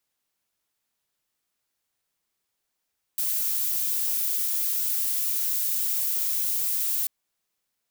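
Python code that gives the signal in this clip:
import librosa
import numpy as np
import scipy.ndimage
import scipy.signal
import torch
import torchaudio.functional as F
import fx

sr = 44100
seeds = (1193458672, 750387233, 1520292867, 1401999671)

y = fx.noise_colour(sr, seeds[0], length_s=3.89, colour='violet', level_db=-26.0)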